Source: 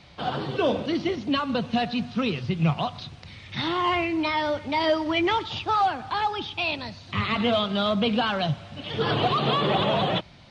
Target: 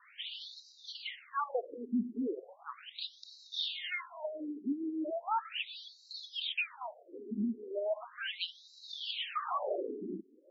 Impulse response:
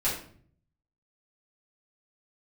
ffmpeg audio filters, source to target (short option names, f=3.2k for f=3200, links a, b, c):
-af "acompressor=threshold=-26dB:ratio=6,afftfilt=real='re*between(b*sr/1024,290*pow(5400/290,0.5+0.5*sin(2*PI*0.37*pts/sr))/1.41,290*pow(5400/290,0.5+0.5*sin(2*PI*0.37*pts/sr))*1.41)':imag='im*between(b*sr/1024,290*pow(5400/290,0.5+0.5*sin(2*PI*0.37*pts/sr))/1.41,290*pow(5400/290,0.5+0.5*sin(2*PI*0.37*pts/sr))*1.41)':win_size=1024:overlap=0.75"